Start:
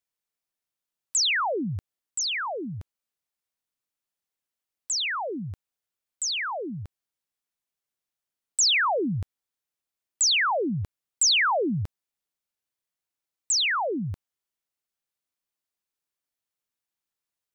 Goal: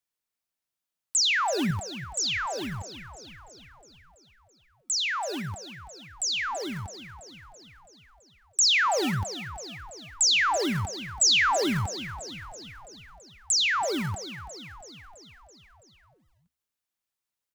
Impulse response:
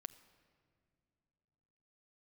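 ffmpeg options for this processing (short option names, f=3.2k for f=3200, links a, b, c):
-filter_complex "[0:a]bandreject=f=196.5:t=h:w=4,bandreject=f=393:t=h:w=4,bandreject=f=589.5:t=h:w=4,bandreject=f=786:t=h:w=4,bandreject=f=982.5:t=h:w=4,bandreject=f=1.179k:t=h:w=4,bandreject=f=1.3755k:t=h:w=4,bandreject=f=1.572k:t=h:w=4,bandreject=f=1.7685k:t=h:w=4,bandreject=f=1.965k:t=h:w=4,bandreject=f=2.1615k:t=h:w=4,bandreject=f=2.358k:t=h:w=4,bandreject=f=2.5545k:t=h:w=4,bandreject=f=2.751k:t=h:w=4,bandreject=f=2.9475k:t=h:w=4,bandreject=f=3.144k:t=h:w=4,bandreject=f=3.3405k:t=h:w=4,bandreject=f=3.537k:t=h:w=4,bandreject=f=3.7335k:t=h:w=4,bandreject=f=3.93k:t=h:w=4,bandreject=f=4.1265k:t=h:w=4,bandreject=f=4.323k:t=h:w=4,bandreject=f=4.5195k:t=h:w=4,bandreject=f=4.716k:t=h:w=4,bandreject=f=4.9125k:t=h:w=4,bandreject=f=5.109k:t=h:w=4,bandreject=f=5.3055k:t=h:w=4,bandreject=f=5.502k:t=h:w=4,bandreject=f=5.6985k:t=h:w=4,bandreject=f=5.895k:t=h:w=4,bandreject=f=6.0915k:t=h:w=4,bandreject=f=6.288k:t=h:w=4,bandreject=f=6.4845k:t=h:w=4,bandreject=f=6.681k:t=h:w=4,bandreject=f=6.8775k:t=h:w=4,bandreject=f=7.074k:t=h:w=4,bandreject=f=7.2705k:t=h:w=4,acrossover=split=110|400|3600[a][b][c][d];[b]acrusher=samples=33:mix=1:aa=0.000001:lfo=1:lforange=19.8:lforate=4[e];[a][e][c][d]amix=inputs=4:normalize=0,asettb=1/sr,asplit=3[f][g][h];[f]atrim=end=1.184[i];[g]atrim=start=1.18:end=1.71,asetpts=PTS-STARTPTS,afade=t=in:d=0.004:c=qsin,afade=t=out:st=0.526:d=0.004:c=qsin,lowshelf=f=160:g=11.5[j];[h]atrim=start=1.706[k];[i][j]acrossfade=d=0.004:c1=hsin:c2=qsin[l];[l][k]acrossfade=d=0.004:c1=qsin:c2=hsin,asplit=8[m][n][o][p][q][r][s][t];[n]adelay=331,afreqshift=-38,volume=-13dB[u];[o]adelay=662,afreqshift=-76,volume=-17.2dB[v];[p]adelay=993,afreqshift=-114,volume=-21.3dB[w];[q]adelay=1324,afreqshift=-152,volume=-25.5dB[x];[r]adelay=1655,afreqshift=-190,volume=-29.6dB[y];[s]adelay=1986,afreqshift=-228,volume=-33.8dB[z];[t]adelay=2317,afreqshift=-266,volume=-37.9dB[aa];[m][u][v][w][x][y][z][aa]amix=inputs=8:normalize=0"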